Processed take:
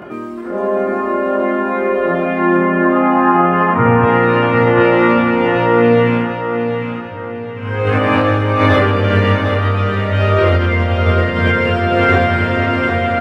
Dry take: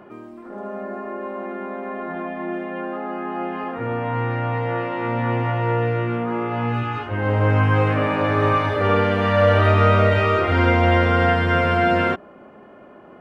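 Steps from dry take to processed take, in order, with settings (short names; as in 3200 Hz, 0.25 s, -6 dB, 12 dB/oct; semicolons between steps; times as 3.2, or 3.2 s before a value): diffused feedback echo 0.535 s, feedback 67%, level -13 dB; negative-ratio compressor -23 dBFS, ratio -1; 2.56–4.03 graphic EQ 125/500/1000/4000 Hz +9/-6/+8/-10 dB; chorus voices 4, 0.18 Hz, delay 22 ms, depth 1.4 ms; HPF 47 Hz; bell 790 Hz -4 dB 0.91 oct; 5.95–7.96 dip -22 dB, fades 0.41 s equal-power; feedback echo 0.751 s, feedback 41%, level -7.5 dB; maximiser +15 dB; gain -1 dB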